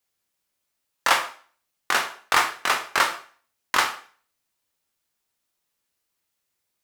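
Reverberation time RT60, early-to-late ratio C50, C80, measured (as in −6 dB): 0.45 s, 11.0 dB, 15.0 dB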